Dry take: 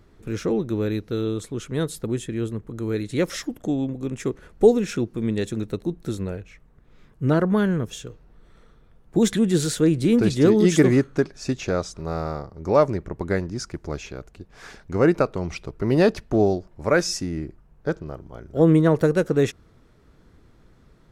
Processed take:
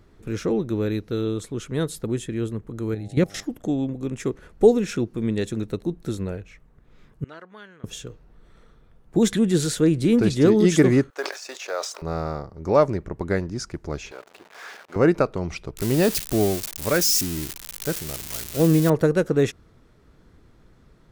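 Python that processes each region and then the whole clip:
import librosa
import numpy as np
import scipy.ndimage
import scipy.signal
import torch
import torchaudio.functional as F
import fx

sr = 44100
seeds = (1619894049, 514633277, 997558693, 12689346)

y = fx.peak_eq(x, sr, hz=120.0, db=12.0, octaves=1.8, at=(2.93, 3.42), fade=0.02)
y = fx.level_steps(y, sr, step_db=16, at=(2.93, 3.42), fade=0.02)
y = fx.dmg_buzz(y, sr, base_hz=100.0, harmonics=8, level_db=-48.0, tilt_db=-2, odd_only=False, at=(2.93, 3.42), fade=0.02)
y = fx.chain(y, sr, fx.lowpass(hz=2900.0, slope=12),
    fx.differentiator(), at=(7.24, 7.84))
y = fx.chain(y, sr, fx.law_mismatch(coded='A'),
    fx.highpass(hz=530.0, slope=24),
    fx.sustainer(db_per_s=75.0), at=(11.1, 12.02))
y = fx.chain(y, sr, fx.zero_step(step_db=-37.0),
    fx.highpass(hz=570.0, slope=12),
    fx.high_shelf(hz=5200.0, db=-10.5), at=(14.11, 14.96))
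y = fx.chain(y, sr, fx.crossing_spikes(level_db=-15.0),
    fx.peak_eq(hz=850.0, db=-4.0, octaves=2.7), at=(15.75, 18.9))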